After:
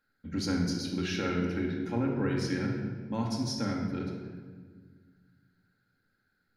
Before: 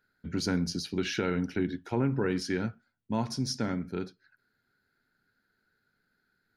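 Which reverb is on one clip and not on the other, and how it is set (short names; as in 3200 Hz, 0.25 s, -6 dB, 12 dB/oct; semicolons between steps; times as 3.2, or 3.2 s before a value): shoebox room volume 1800 m³, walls mixed, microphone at 2.2 m; gain -4.5 dB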